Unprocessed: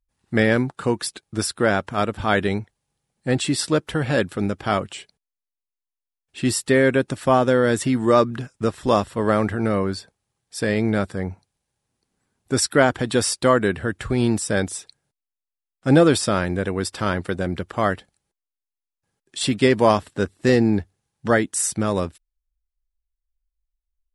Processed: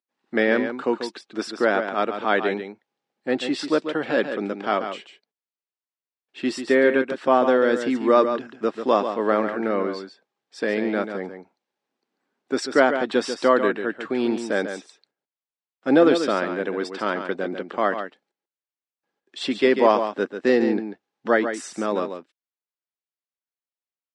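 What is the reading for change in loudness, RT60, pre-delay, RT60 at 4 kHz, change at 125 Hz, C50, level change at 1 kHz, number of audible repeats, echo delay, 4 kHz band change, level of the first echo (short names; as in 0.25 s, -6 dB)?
-1.5 dB, none, none, none, -17.0 dB, none, 0.0 dB, 1, 0.141 s, -4.5 dB, -8.5 dB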